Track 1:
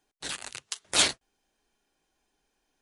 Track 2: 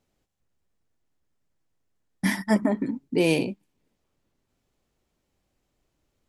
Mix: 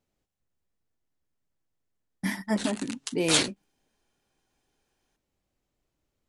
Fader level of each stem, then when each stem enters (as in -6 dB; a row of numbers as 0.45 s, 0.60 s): -1.0 dB, -5.5 dB; 2.35 s, 0.00 s